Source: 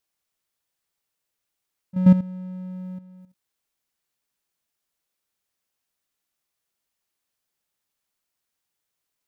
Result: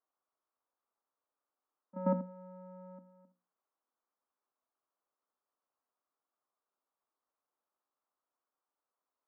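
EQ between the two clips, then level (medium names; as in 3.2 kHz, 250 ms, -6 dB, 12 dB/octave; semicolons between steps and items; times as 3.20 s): Chebyshev band-pass 240–1200 Hz, order 3; tilt EQ +3 dB/octave; hum notches 60/120/180/240/300/360/420/480/540 Hz; +1.5 dB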